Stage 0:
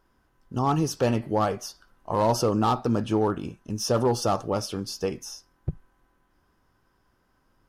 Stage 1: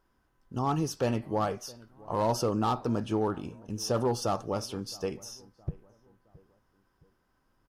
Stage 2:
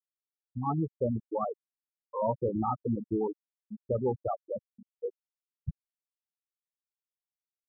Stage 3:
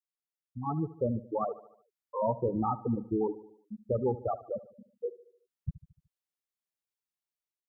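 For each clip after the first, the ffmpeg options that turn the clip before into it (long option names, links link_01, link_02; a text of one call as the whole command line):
ffmpeg -i in.wav -filter_complex "[0:a]asplit=2[link_01][link_02];[link_02]adelay=667,lowpass=frequency=1300:poles=1,volume=-22dB,asplit=2[link_03][link_04];[link_04]adelay=667,lowpass=frequency=1300:poles=1,volume=0.45,asplit=2[link_05][link_06];[link_06]adelay=667,lowpass=frequency=1300:poles=1,volume=0.45[link_07];[link_01][link_03][link_05][link_07]amix=inputs=4:normalize=0,volume=-5dB" out.wav
ffmpeg -i in.wav -af "afftfilt=real='re*gte(hypot(re,im),0.178)':imag='im*gte(hypot(re,im),0.178)':win_size=1024:overlap=0.75" out.wav
ffmpeg -i in.wav -af "dynaudnorm=framelen=460:gausssize=3:maxgain=7dB,aecho=1:1:74|148|222|296|370:0.141|0.0735|0.0382|0.0199|0.0103,volume=-7dB" out.wav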